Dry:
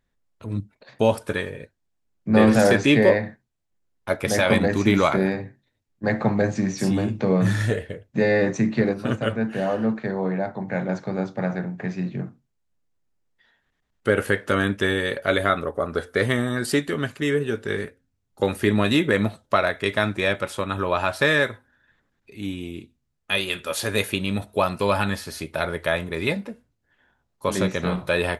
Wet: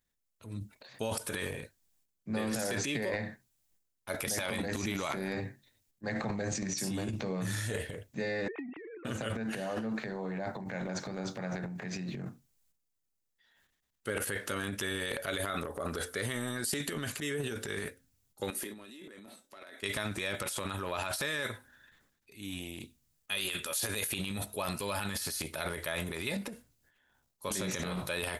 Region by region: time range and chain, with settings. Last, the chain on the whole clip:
0:08.48–0:09.05: three sine waves on the formant tracks + Butterworth low-pass 2,400 Hz + downward compressor 12 to 1, threshold −32 dBFS
0:18.50–0:19.83: low shelf with overshoot 180 Hz −12.5 dB, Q 3 + downward compressor 4 to 1, threshold −32 dBFS + tuned comb filter 190 Hz, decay 0.22 s, mix 70%
whole clip: first-order pre-emphasis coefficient 0.8; transient designer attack −2 dB, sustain +12 dB; downward compressor, threshold −32 dBFS; level +1.5 dB

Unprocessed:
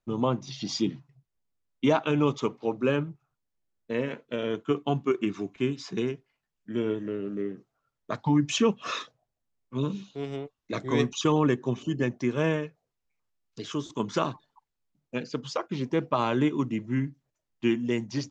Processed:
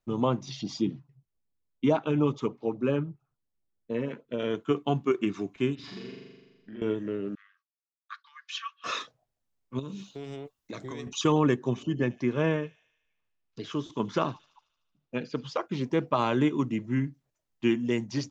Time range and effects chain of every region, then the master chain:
0:00.61–0:04.40: high-shelf EQ 2,000 Hz −9 dB + auto-filter notch sine 7 Hz 550–2,100 Hz
0:05.75–0:06.82: high shelf with overshoot 4,700 Hz −13.5 dB, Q 1.5 + downward compressor 5 to 1, threshold −43 dBFS + flutter between parallel walls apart 7.2 metres, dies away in 1.3 s
0:07.35–0:08.84: downward expander −47 dBFS + Chebyshev high-pass with heavy ripple 1,100 Hz, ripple 6 dB + high-frequency loss of the air 170 metres
0:09.79–0:11.07: high-shelf EQ 6,800 Hz +10.5 dB + downward compressor 10 to 1, threshold −34 dBFS
0:11.83–0:15.57: high-frequency loss of the air 120 metres + delay with a high-pass on its return 75 ms, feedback 64%, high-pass 3,700 Hz, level −14 dB
whole clip: no processing

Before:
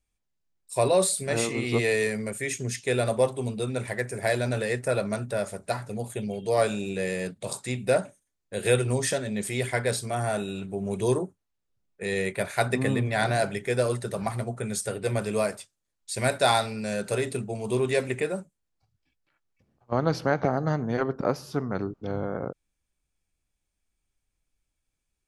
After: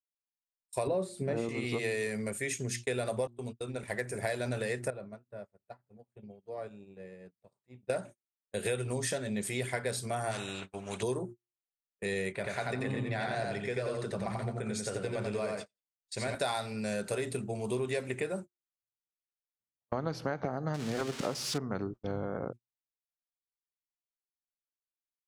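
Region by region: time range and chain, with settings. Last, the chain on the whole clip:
0:00.87–0:01.49: high-pass filter 190 Hz + spectral tilt −4.5 dB per octave
0:03.27–0:03.83: noise gate −31 dBFS, range −28 dB + high-shelf EQ 8,800 Hz −4.5 dB + downward compressor 2 to 1, threshold −33 dBFS
0:04.90–0:07.90: low-pass filter 1,100 Hz 6 dB per octave + downward compressor 3 to 1, threshold −38 dBFS
0:10.31–0:11.03: low-pass filter 5,300 Hz + low-shelf EQ 500 Hz −4 dB + every bin compressed towards the loudest bin 2 to 1
0:12.32–0:16.35: low-pass filter 6,300 Hz + downward compressor 2 to 1, threshold −30 dBFS + repeating echo 88 ms, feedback 23%, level −3 dB
0:20.74–0:21.58: spike at every zero crossing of −16 dBFS + high-frequency loss of the air 91 metres
whole clip: hum removal 118.5 Hz, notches 3; noise gate −37 dBFS, range −38 dB; downward compressor 5 to 1, threshold −27 dBFS; level −2.5 dB

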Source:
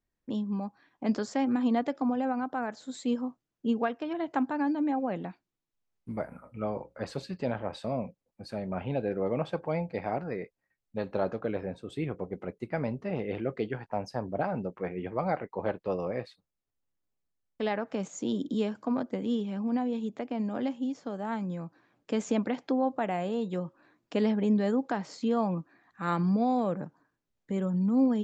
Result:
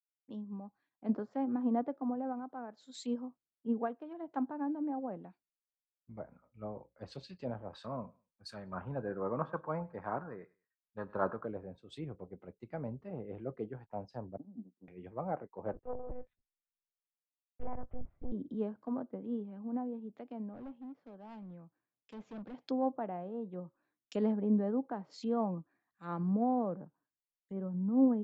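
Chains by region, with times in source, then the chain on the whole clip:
0:07.73–0:11.46: flat-topped bell 1,300 Hz +13 dB 1.1 octaves + repeating echo 102 ms, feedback 30%, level −20 dB
0:14.37–0:14.88: flat-topped band-pass 240 Hz, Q 2.4 + transient designer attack +8 dB, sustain −7 dB
0:15.73–0:18.32: low-pass filter 1,800 Hz + one-pitch LPC vocoder at 8 kHz 250 Hz + highs frequency-modulated by the lows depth 0.53 ms
0:20.53–0:22.54: low-pass filter 2,800 Hz + hard clipping −30.5 dBFS
whole clip: treble cut that deepens with the level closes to 1,500 Hz, closed at −28.5 dBFS; dynamic equaliser 2,100 Hz, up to −6 dB, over −53 dBFS, Q 1.2; multiband upward and downward expander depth 100%; level −7.5 dB

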